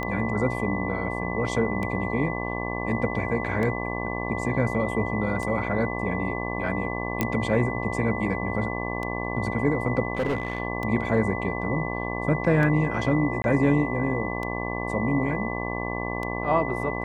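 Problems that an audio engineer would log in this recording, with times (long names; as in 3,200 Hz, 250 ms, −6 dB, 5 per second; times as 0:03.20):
mains buzz 60 Hz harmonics 19 −31 dBFS
scratch tick 33 1/3 rpm −18 dBFS
whistle 2,000 Hz −33 dBFS
0:07.21: click −9 dBFS
0:10.15–0:10.60: clipping −21.5 dBFS
0:13.42–0:13.44: drop-out 20 ms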